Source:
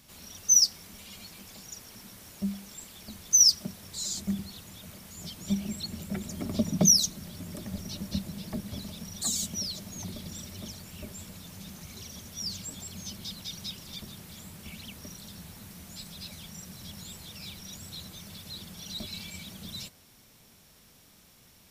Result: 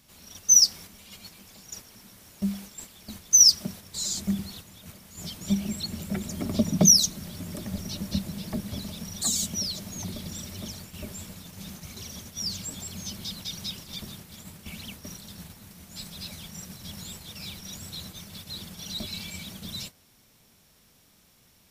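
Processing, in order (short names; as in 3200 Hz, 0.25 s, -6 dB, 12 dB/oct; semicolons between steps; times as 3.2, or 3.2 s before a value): gate -45 dBFS, range -6 dB; gain +3.5 dB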